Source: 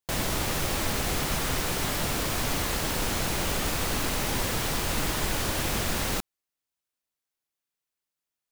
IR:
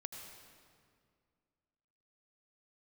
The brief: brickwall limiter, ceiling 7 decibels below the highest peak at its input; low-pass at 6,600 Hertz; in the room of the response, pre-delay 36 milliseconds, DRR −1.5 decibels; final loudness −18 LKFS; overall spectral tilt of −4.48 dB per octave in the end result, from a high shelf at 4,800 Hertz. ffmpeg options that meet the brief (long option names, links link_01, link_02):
-filter_complex "[0:a]lowpass=6600,highshelf=frequency=4800:gain=-8.5,alimiter=limit=-24dB:level=0:latency=1,asplit=2[link_01][link_02];[1:a]atrim=start_sample=2205,adelay=36[link_03];[link_02][link_03]afir=irnorm=-1:irlink=0,volume=4.5dB[link_04];[link_01][link_04]amix=inputs=2:normalize=0,volume=12dB"